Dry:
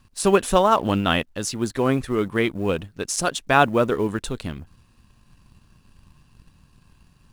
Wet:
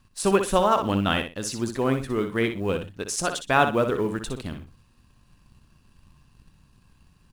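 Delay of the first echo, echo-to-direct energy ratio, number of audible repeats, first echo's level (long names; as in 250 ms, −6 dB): 61 ms, −8.0 dB, 2, −8.0 dB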